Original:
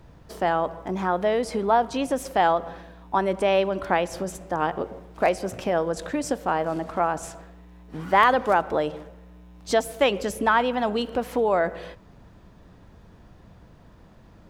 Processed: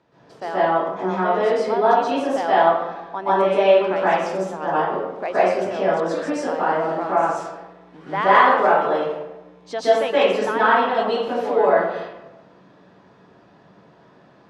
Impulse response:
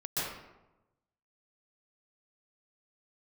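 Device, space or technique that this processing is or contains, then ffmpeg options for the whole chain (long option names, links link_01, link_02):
supermarket ceiling speaker: -filter_complex "[0:a]highpass=260,lowpass=5300[link_01];[1:a]atrim=start_sample=2205[link_02];[link_01][link_02]afir=irnorm=-1:irlink=0,volume=-1.5dB"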